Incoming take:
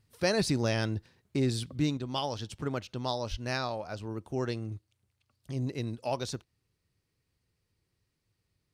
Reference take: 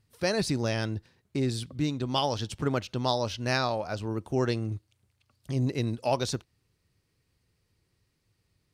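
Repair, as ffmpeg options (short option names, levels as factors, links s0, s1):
-filter_complex "[0:a]asplit=3[s0][s1][s2];[s0]afade=t=out:st=3.3:d=0.02[s3];[s1]highpass=f=140:w=0.5412,highpass=f=140:w=1.3066,afade=t=in:st=3.3:d=0.02,afade=t=out:st=3.42:d=0.02[s4];[s2]afade=t=in:st=3.42:d=0.02[s5];[s3][s4][s5]amix=inputs=3:normalize=0,asetnsamples=n=441:p=0,asendcmd='1.97 volume volume 5.5dB',volume=1"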